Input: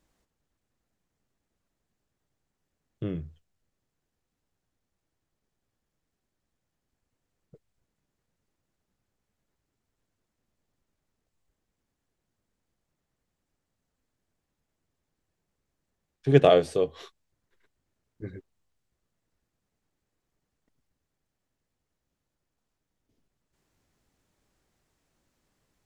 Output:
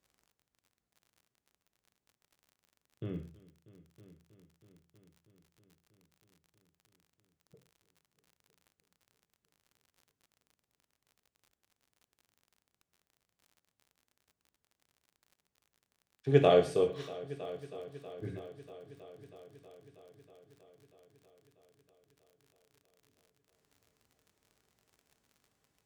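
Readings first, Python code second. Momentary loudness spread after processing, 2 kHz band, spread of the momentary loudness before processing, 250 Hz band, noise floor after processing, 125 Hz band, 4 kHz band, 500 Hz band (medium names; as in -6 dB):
24 LU, -5.5 dB, 24 LU, -6.0 dB, under -85 dBFS, -5.5 dB, -5.5 dB, -4.5 dB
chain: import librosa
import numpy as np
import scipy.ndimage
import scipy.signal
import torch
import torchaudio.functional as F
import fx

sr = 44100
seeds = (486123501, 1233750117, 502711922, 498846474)

p1 = scipy.signal.sosfilt(scipy.signal.butter(2, 62.0, 'highpass', fs=sr, output='sos'), x)
p2 = fx.rider(p1, sr, range_db=10, speed_s=0.5)
p3 = p2 + fx.echo_heads(p2, sr, ms=320, heads='all three', feedback_pct=62, wet_db=-22, dry=0)
p4 = fx.rev_gated(p3, sr, seeds[0], gate_ms=160, shape='falling', drr_db=4.5)
p5 = fx.dmg_crackle(p4, sr, seeds[1], per_s=51.0, level_db=-48.0)
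y = p5 * librosa.db_to_amplitude(-3.0)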